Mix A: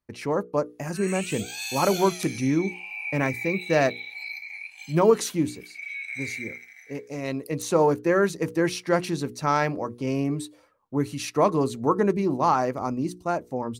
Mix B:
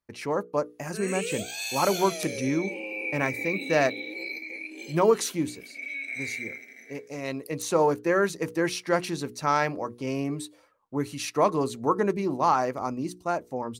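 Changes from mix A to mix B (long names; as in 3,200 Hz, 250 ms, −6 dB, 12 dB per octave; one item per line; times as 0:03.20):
background: remove Butterworth high-pass 740 Hz 72 dB per octave
master: add low-shelf EQ 360 Hz −6 dB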